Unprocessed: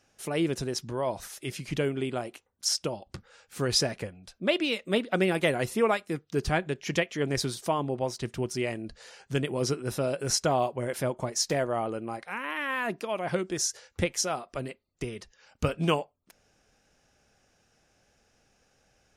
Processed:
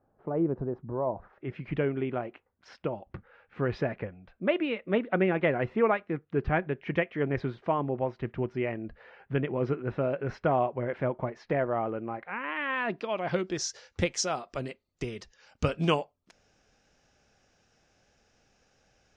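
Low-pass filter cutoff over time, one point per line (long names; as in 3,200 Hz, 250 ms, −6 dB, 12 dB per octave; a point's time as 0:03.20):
low-pass filter 24 dB per octave
0:01.20 1,100 Hz
0:01.60 2,300 Hz
0:12.26 2,300 Hz
0:12.89 4,000 Hz
0:14.11 6,900 Hz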